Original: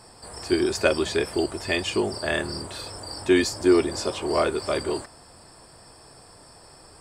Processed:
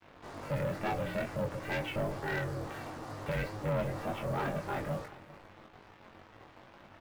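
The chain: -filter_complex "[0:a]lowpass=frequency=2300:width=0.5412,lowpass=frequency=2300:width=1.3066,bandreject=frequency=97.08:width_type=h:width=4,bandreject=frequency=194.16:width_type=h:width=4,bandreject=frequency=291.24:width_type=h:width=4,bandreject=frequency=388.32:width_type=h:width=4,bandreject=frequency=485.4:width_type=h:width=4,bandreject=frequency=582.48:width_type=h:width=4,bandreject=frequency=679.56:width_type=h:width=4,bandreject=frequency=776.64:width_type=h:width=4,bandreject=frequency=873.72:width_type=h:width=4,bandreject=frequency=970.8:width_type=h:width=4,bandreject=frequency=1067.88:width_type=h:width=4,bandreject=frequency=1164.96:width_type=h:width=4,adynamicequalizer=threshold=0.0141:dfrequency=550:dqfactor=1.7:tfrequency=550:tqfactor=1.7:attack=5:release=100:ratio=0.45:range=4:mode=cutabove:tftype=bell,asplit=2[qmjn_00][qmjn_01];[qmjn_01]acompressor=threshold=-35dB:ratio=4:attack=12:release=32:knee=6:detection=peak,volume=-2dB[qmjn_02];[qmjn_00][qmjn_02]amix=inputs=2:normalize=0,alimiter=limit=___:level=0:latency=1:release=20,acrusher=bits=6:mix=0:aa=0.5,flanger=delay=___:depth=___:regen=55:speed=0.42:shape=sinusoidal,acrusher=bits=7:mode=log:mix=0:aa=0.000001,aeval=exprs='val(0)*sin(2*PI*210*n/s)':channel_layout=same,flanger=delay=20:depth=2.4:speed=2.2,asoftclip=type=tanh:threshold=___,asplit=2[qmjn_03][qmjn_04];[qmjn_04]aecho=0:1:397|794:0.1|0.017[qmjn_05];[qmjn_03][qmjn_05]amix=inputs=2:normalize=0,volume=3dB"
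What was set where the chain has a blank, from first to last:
-10dB, 8.4, 1.1, -30.5dB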